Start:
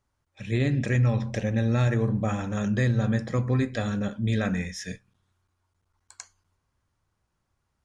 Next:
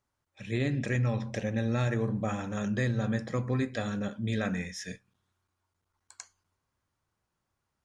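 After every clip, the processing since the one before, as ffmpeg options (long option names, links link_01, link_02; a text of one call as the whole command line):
ffmpeg -i in.wav -af "lowshelf=frequency=90:gain=-10,volume=-3dB" out.wav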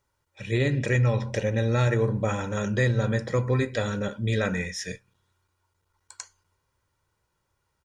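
ffmpeg -i in.wav -af "aecho=1:1:2.1:0.46,volume=5.5dB" out.wav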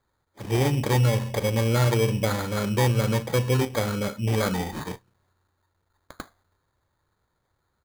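ffmpeg -i in.wav -af "acrusher=samples=16:mix=1:aa=0.000001,volume=1.5dB" out.wav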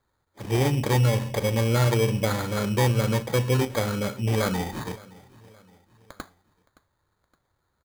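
ffmpeg -i in.wav -af "aecho=1:1:568|1136|1704:0.0794|0.0357|0.0161" out.wav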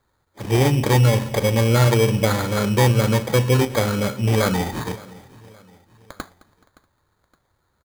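ffmpeg -i in.wav -af "aecho=1:1:213|426|639:0.0891|0.0401|0.018,volume=5.5dB" out.wav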